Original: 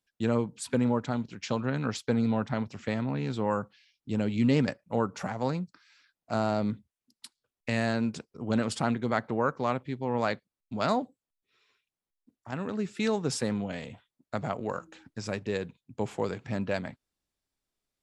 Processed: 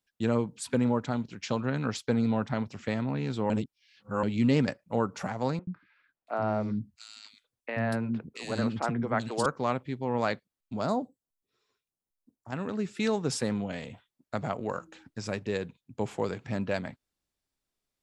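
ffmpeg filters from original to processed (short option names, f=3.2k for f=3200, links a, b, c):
-filter_complex "[0:a]asettb=1/sr,asplit=3[a][b][c];[a]atrim=end=5.594[d];[b]atrim=start=5.59:end=9.46,asetpts=PTS-STARTPTS,afade=t=in:d=0.004:c=qsin,afade=t=out:st=3.866:d=0.004:c=qsin,acrossover=split=310|2600[e][f][g];[e]adelay=80[h];[g]adelay=680[i];[h][f][i]amix=inputs=3:normalize=0,atrim=end_sample=170667[j];[c]atrim=start=9.456[k];[d][j]acrossfade=d=0.004:c1=hsin:c2=qsin[l];[l][k]acrossfade=d=0.004:c1=qsin:c2=hsin,asplit=3[m][n][o];[m]afade=t=out:st=10.8:d=0.02[p];[n]equalizer=f=2.4k:t=o:w=1.6:g=-14,afade=t=in:st=10.8:d=0.02,afade=t=out:st=12.5:d=0.02[q];[o]afade=t=in:st=12.5:d=0.02[r];[p][q][r]amix=inputs=3:normalize=0,asplit=3[s][t][u];[s]atrim=end=3.502[v];[t]atrim=start=3.498:end=4.232,asetpts=PTS-STARTPTS,areverse[w];[u]atrim=start=4.228[x];[v][w]acrossfade=d=0.004:c1=hsin:c2=hsin[y];[y][x]acrossfade=d=0.004:c1=hsin:c2=hsin"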